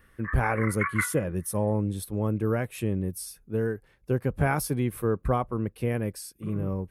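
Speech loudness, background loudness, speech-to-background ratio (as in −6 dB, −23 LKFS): −29.0 LKFS, −32.5 LKFS, 3.5 dB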